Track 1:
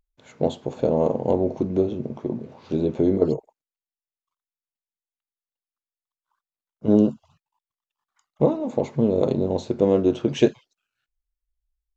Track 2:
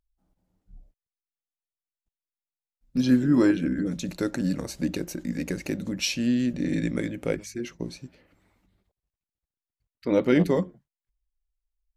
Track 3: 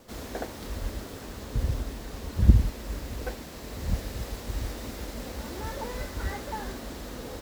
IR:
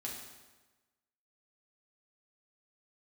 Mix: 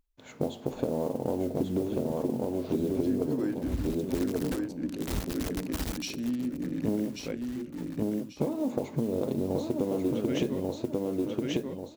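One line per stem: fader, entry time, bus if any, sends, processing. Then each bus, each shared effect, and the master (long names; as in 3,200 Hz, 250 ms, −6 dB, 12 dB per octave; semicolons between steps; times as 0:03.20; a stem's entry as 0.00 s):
−0.5 dB, 0.00 s, send −18 dB, echo send −3 dB, downward compressor, threshold −20 dBFS, peak gain reduction 9.5 dB; noise that follows the level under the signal 24 dB
−10.5 dB, 0.00 s, send −13.5 dB, echo send −4 dB, adaptive Wiener filter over 25 samples
−2.5 dB, 1.25 s, no send, no echo send, bit reduction 5 bits; automatic ducking −18 dB, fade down 1.00 s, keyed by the first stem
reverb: on, RT60 1.2 s, pre-delay 4 ms
echo: repeating echo 1,139 ms, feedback 27%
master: parametric band 280 Hz +6 dB 0.34 octaves; downward compressor 3 to 1, threshold −27 dBFS, peak gain reduction 9 dB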